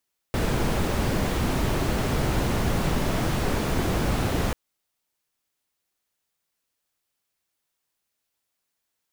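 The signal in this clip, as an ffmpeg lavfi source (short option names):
-f lavfi -i "anoisesrc=c=brown:a=0.313:d=4.19:r=44100:seed=1"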